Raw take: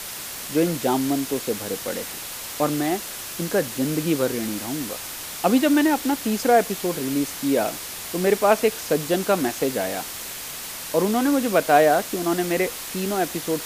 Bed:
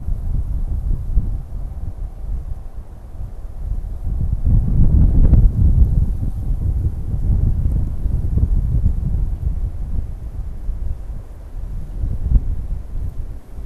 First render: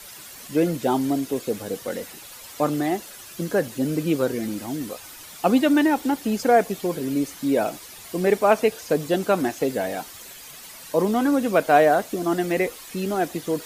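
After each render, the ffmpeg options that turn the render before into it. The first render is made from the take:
ffmpeg -i in.wav -af "afftdn=noise_reduction=11:noise_floor=-34" out.wav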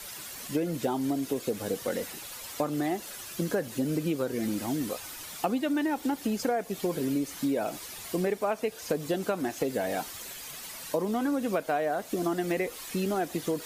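ffmpeg -i in.wav -af "acompressor=threshold=-25dB:ratio=10" out.wav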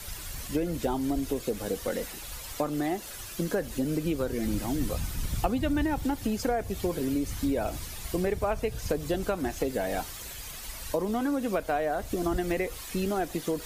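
ffmpeg -i in.wav -i bed.wav -filter_complex "[1:a]volume=-21dB[link_01];[0:a][link_01]amix=inputs=2:normalize=0" out.wav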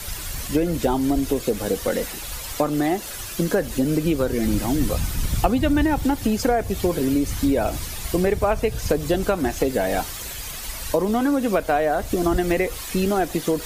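ffmpeg -i in.wav -af "volume=8dB" out.wav

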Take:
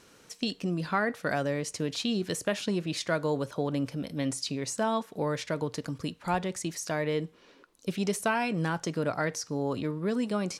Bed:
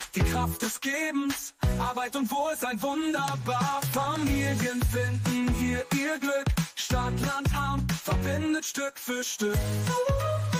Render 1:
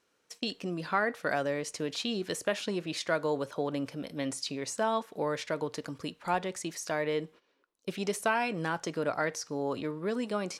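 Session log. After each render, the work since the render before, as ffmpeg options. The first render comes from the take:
ffmpeg -i in.wav -af "agate=range=-15dB:threshold=-48dB:ratio=16:detection=peak,bass=frequency=250:gain=-9,treble=frequency=4000:gain=-3" out.wav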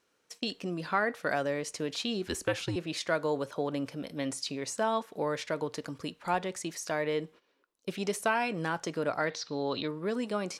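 ffmpeg -i in.wav -filter_complex "[0:a]asettb=1/sr,asplit=3[link_01][link_02][link_03];[link_01]atrim=end=2.274[link_04];[link_02]atrim=start=2.27:end=2.76,asetpts=PTS-STARTPTS,afade=type=in:duration=0.004:curve=qsin,afade=type=out:start_time=0.486:duration=0.004:curve=qsin,afreqshift=-89[link_05];[link_03]atrim=start=2.756[link_06];[link_04][link_05]acrossfade=duration=0.004:curve1=hsin:curve2=qsin[link_07];[link_07][link_06]acrossfade=duration=0.004:curve1=qsin:curve2=hsin,asettb=1/sr,asplit=3[link_08][link_09][link_10];[link_08]atrim=end=9.304[link_11];[link_09]atrim=start=9.3:end=9.88,asetpts=PTS-STARTPTS,afade=type=in:duration=0.004:curve=qsin,afade=type=out:start_time=0.576:duration=0.004:curve=qsin,lowpass=frequency=3900:width_type=q:width=5.9[link_12];[link_10]atrim=start=9.876[link_13];[link_11][link_12]acrossfade=duration=0.004:curve1=hsin:curve2=qsin[link_14];[link_14][link_13]acrossfade=duration=0.004:curve1=qsin:curve2=hsin" out.wav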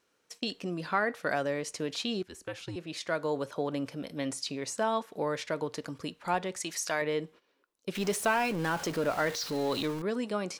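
ffmpeg -i in.wav -filter_complex "[0:a]asettb=1/sr,asplit=3[link_01][link_02][link_03];[link_01]atrim=end=6.604[link_04];[link_02]atrim=start=6.6:end=7.02,asetpts=PTS-STARTPTS,afade=type=in:duration=0.004:curve=qsin,afade=type=out:start_time=0.416:duration=0.004:curve=qsin,tiltshelf=frequency=680:gain=-5.5[link_05];[link_03]atrim=start=7.016[link_06];[link_04][link_05]acrossfade=duration=0.004:curve1=hsin:curve2=qsin[link_07];[link_07][link_06]acrossfade=duration=0.004:curve1=qsin:curve2=hsin,asettb=1/sr,asplit=3[link_08][link_09][link_10];[link_08]atrim=end=7.954[link_11];[link_09]atrim=start=7.95:end=10.02,asetpts=PTS-STARTPTS,afade=type=in:duration=0.004:curve=qsin,afade=type=out:start_time=2.066:duration=0.004:curve=qsin,aeval=exprs='val(0)+0.5*0.0158*sgn(val(0))':channel_layout=same[link_12];[link_10]atrim=start=10.016[link_13];[link_11][link_12]acrossfade=duration=0.004:curve1=hsin:curve2=qsin[link_14];[link_14][link_13]acrossfade=duration=0.004:curve1=qsin:curve2=hsin,asplit=2[link_15][link_16];[link_15]atrim=end=2.23,asetpts=PTS-STARTPTS,afade=type=out:start_time=2.226:duration=0.004:curve=hsin:silence=0.16788[link_17];[link_16]atrim=start=2.23,asetpts=PTS-STARTPTS,afade=type=in:duration=1.22:silence=0.16788[link_18];[link_17][link_18]concat=n=2:v=0:a=1" out.wav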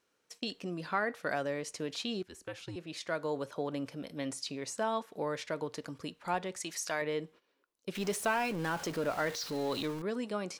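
ffmpeg -i in.wav -af "volume=-3.5dB" out.wav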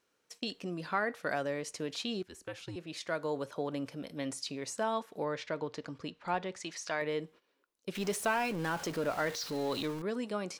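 ffmpeg -i in.wav -filter_complex "[0:a]asettb=1/sr,asplit=3[link_01][link_02][link_03];[link_01]atrim=end=5.244[link_04];[link_02]atrim=start=5.24:end=7.01,asetpts=PTS-STARTPTS,afade=type=in:duration=0.004:curve=qsin,afade=type=out:start_time=1.766:duration=0.004:curve=qsin,lowpass=5300[link_05];[link_03]atrim=start=7.006[link_06];[link_04][link_05]acrossfade=duration=0.004:curve1=hsin:curve2=qsin[link_07];[link_07][link_06]acrossfade=duration=0.004:curve1=qsin:curve2=hsin" out.wav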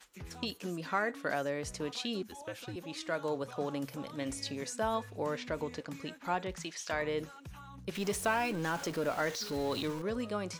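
ffmpeg -i in.wav -i bed.wav -filter_complex "[1:a]volume=-22dB[link_01];[0:a][link_01]amix=inputs=2:normalize=0" out.wav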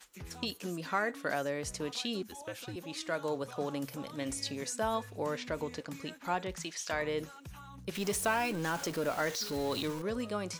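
ffmpeg -i in.wav -af "highshelf=frequency=5800:gain=5.5" out.wav

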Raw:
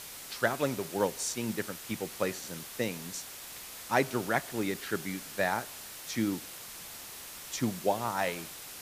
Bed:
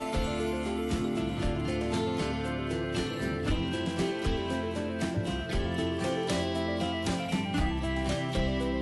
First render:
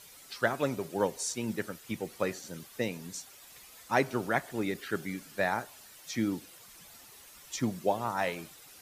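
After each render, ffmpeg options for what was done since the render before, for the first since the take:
ffmpeg -i in.wav -af "afftdn=noise_reduction=11:noise_floor=-45" out.wav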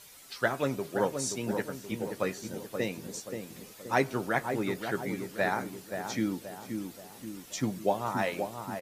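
ffmpeg -i in.wav -filter_complex "[0:a]asplit=2[link_01][link_02];[link_02]adelay=15,volume=-11.5dB[link_03];[link_01][link_03]amix=inputs=2:normalize=0,asplit=2[link_04][link_05];[link_05]adelay=528,lowpass=frequency=1100:poles=1,volume=-5.5dB,asplit=2[link_06][link_07];[link_07]adelay=528,lowpass=frequency=1100:poles=1,volume=0.53,asplit=2[link_08][link_09];[link_09]adelay=528,lowpass=frequency=1100:poles=1,volume=0.53,asplit=2[link_10][link_11];[link_11]adelay=528,lowpass=frequency=1100:poles=1,volume=0.53,asplit=2[link_12][link_13];[link_13]adelay=528,lowpass=frequency=1100:poles=1,volume=0.53,asplit=2[link_14][link_15];[link_15]adelay=528,lowpass=frequency=1100:poles=1,volume=0.53,asplit=2[link_16][link_17];[link_17]adelay=528,lowpass=frequency=1100:poles=1,volume=0.53[link_18];[link_04][link_06][link_08][link_10][link_12][link_14][link_16][link_18]amix=inputs=8:normalize=0" out.wav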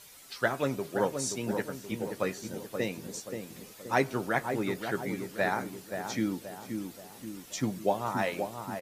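ffmpeg -i in.wav -af anull out.wav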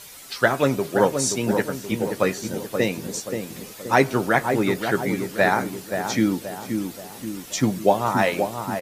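ffmpeg -i in.wav -af "volume=10dB,alimiter=limit=-3dB:level=0:latency=1" out.wav

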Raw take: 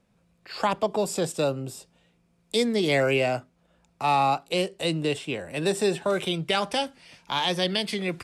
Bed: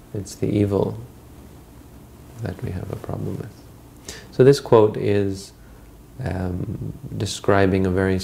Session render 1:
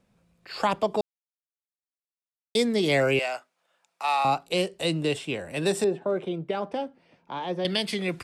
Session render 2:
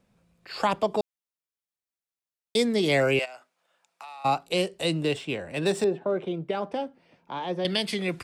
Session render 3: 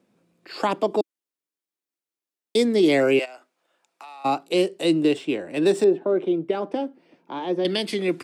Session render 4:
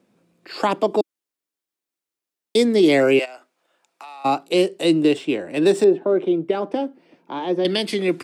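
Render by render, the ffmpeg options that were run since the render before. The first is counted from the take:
ffmpeg -i in.wav -filter_complex "[0:a]asettb=1/sr,asplit=3[link_01][link_02][link_03];[link_01]atrim=end=3.194[link_04];[link_02]atrim=start=3.19:end=4.25,asetpts=PTS-STARTPTS,afade=type=in:duration=0.004:curve=qsin,afade=type=out:start_time=1.056:duration=0.004:curve=qsin,highpass=820[link_05];[link_03]atrim=start=4.246[link_06];[link_04][link_05]acrossfade=duration=0.004:curve1=hsin:curve2=qsin[link_07];[link_07][link_06]acrossfade=duration=0.004:curve1=qsin:curve2=hsin,asettb=1/sr,asplit=3[link_08][link_09][link_10];[link_08]atrim=end=5.844[link_11];[link_09]atrim=start=5.84:end=7.65,asetpts=PTS-STARTPTS,afade=type=in:duration=0.004:curve=qsin,afade=type=out:start_time=1.806:duration=0.004:curve=qsin,bandpass=frequency=370:width_type=q:width=0.75[link_12];[link_10]atrim=start=7.646[link_13];[link_11][link_12]acrossfade=duration=0.004:curve1=hsin:curve2=qsin[link_14];[link_14][link_13]acrossfade=duration=0.004:curve1=qsin:curve2=hsin,asplit=3[link_15][link_16][link_17];[link_15]atrim=end=1.01,asetpts=PTS-STARTPTS,afade=type=out:start_time=1.006:duration=0.004:curve=hsin[link_18];[link_16]atrim=start=1.01:end=2.55,asetpts=PTS-STARTPTS,volume=0[link_19];[link_17]atrim=start=2.55,asetpts=PTS-STARTPTS,afade=type=in:duration=0.004:curve=hsin[link_20];[link_18][link_19][link_20]concat=n=3:v=0:a=1" out.wav
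ffmpeg -i in.wav -filter_complex "[0:a]asplit=3[link_01][link_02][link_03];[link_01]afade=type=out:start_time=3.24:duration=0.02[link_04];[link_02]acompressor=threshold=-39dB:ratio=12:attack=3.2:release=140:knee=1:detection=peak,afade=type=in:start_time=3.24:duration=0.02,afade=type=out:start_time=4.24:duration=0.02[link_05];[link_03]afade=type=in:start_time=4.24:duration=0.02[link_06];[link_04][link_05][link_06]amix=inputs=3:normalize=0,asettb=1/sr,asplit=3[link_07][link_08][link_09];[link_07]atrim=end=5.044[link_10];[link_08]atrim=start=5.04:end=6.37,asetpts=PTS-STARTPTS,afade=type=in:duration=0.004:curve=qsin,afade=type=out:start_time=1.326:duration=0.004:curve=qsin,adynamicsmooth=sensitivity=6:basefreq=6700[link_11];[link_09]atrim=start=6.366[link_12];[link_10][link_11]acrossfade=duration=0.004:curve1=hsin:curve2=qsin[link_13];[link_13][link_12]acrossfade=duration=0.004:curve1=qsin:curve2=hsin" out.wav
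ffmpeg -i in.wav -af "highpass=180,equalizer=frequency=320:width_type=o:width=0.8:gain=11.5" out.wav
ffmpeg -i in.wav -af "volume=3dB" out.wav

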